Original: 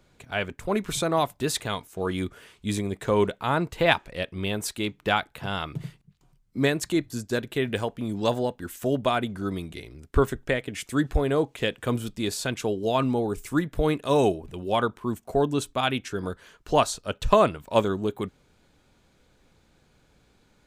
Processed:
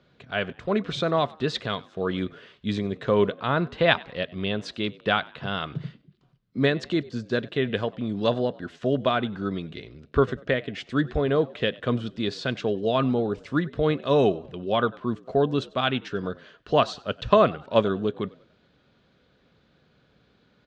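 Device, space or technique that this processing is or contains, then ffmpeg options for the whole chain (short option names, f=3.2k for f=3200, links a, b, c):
frequency-shifting delay pedal into a guitar cabinet: -filter_complex "[0:a]asplit=4[a][b][c][d];[b]adelay=96,afreqshift=70,volume=-23dB[e];[c]adelay=192,afreqshift=140,volume=-31.2dB[f];[d]adelay=288,afreqshift=210,volume=-39.4dB[g];[a][e][f][g]amix=inputs=4:normalize=0,highpass=82,equalizer=f=85:t=q:w=4:g=-7,equalizer=f=320:t=q:w=4:g=-4,equalizer=f=870:t=q:w=4:g=-8,equalizer=f=2.3k:t=q:w=4:g=-5,lowpass=f=4.3k:w=0.5412,lowpass=f=4.3k:w=1.3066,volume=2.5dB"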